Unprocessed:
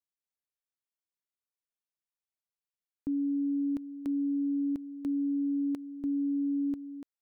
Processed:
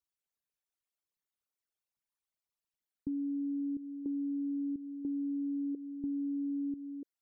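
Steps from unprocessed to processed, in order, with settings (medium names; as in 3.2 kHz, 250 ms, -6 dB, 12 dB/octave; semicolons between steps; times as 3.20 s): resonances exaggerated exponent 3; compression 4:1, threshold -34 dBFS, peak gain reduction 5 dB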